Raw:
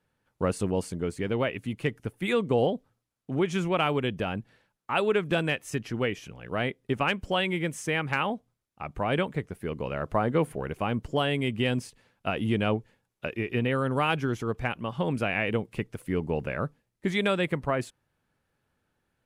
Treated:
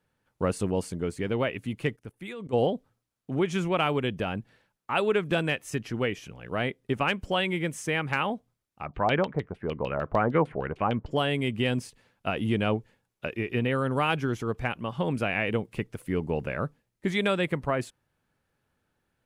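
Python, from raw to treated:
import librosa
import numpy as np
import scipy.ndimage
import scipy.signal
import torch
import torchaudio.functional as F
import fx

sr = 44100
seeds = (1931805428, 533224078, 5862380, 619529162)

y = fx.level_steps(x, sr, step_db=19, at=(1.95, 2.52), fade=0.02)
y = fx.filter_lfo_lowpass(y, sr, shape='saw_down', hz=6.6, low_hz=650.0, high_hz=4300.0, q=2.4, at=(8.85, 11.1), fade=0.02)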